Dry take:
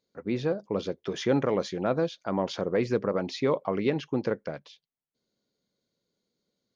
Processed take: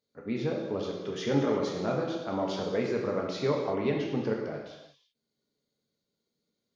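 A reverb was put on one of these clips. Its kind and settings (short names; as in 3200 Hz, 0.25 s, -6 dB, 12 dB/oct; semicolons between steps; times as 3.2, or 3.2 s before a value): non-linear reverb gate 0.39 s falling, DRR -1.5 dB; gain -5.5 dB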